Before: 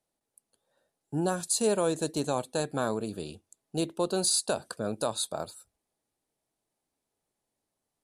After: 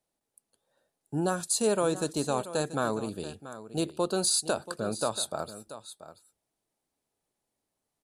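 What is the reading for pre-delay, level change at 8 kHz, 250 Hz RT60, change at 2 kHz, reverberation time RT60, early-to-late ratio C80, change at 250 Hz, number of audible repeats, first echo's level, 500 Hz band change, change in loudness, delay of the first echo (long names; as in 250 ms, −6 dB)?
no reverb audible, 0.0 dB, no reverb audible, +2.0 dB, no reverb audible, no reverb audible, 0.0 dB, 1, −14.0 dB, 0.0 dB, 0.0 dB, 683 ms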